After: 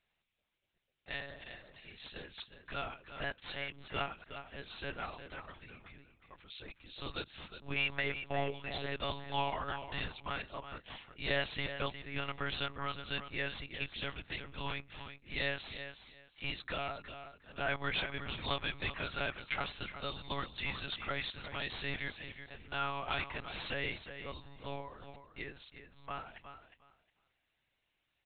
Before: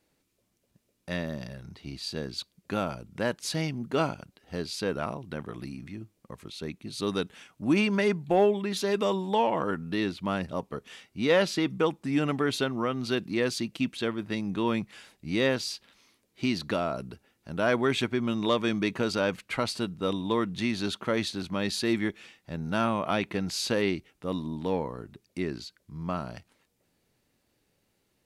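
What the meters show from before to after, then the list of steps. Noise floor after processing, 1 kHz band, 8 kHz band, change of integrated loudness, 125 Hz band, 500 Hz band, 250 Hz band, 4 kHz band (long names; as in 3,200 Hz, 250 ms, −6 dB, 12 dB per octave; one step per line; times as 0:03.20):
−82 dBFS, −8.0 dB, below −35 dB, −10.0 dB, −10.5 dB, −15.0 dB, −19.5 dB, −5.5 dB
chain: first difference
hard clipping −33 dBFS, distortion −14 dB
high-frequency loss of the air 230 metres
repeating echo 361 ms, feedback 19%, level −10 dB
one-pitch LPC vocoder at 8 kHz 140 Hz
level +10.5 dB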